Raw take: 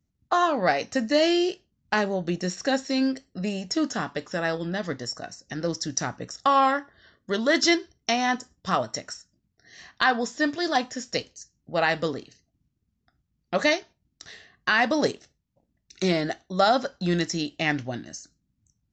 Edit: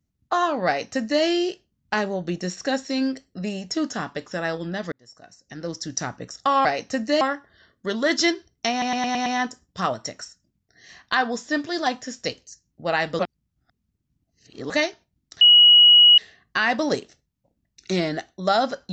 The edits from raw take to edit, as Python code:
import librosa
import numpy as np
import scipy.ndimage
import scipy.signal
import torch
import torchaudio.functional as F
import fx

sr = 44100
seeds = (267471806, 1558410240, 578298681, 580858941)

y = fx.edit(x, sr, fx.duplicate(start_s=0.67, length_s=0.56, to_s=6.65),
    fx.fade_in_span(start_s=4.92, length_s=1.1),
    fx.stutter(start_s=8.15, slice_s=0.11, count=6),
    fx.reverse_span(start_s=12.08, length_s=1.51),
    fx.insert_tone(at_s=14.3, length_s=0.77, hz=2910.0, db=-8.5), tone=tone)